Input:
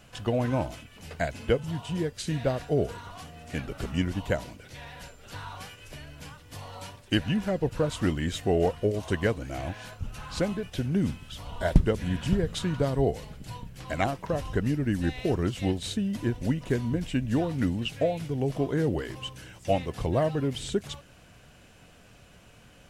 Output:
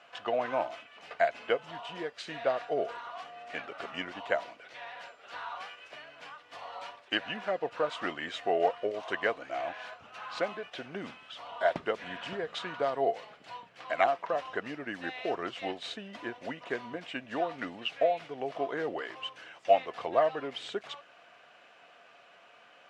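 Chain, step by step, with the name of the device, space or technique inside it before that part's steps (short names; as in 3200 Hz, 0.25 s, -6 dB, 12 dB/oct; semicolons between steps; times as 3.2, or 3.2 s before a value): tin-can telephone (BPF 650–3000 Hz; small resonant body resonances 690/1200 Hz, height 7 dB); gain +2 dB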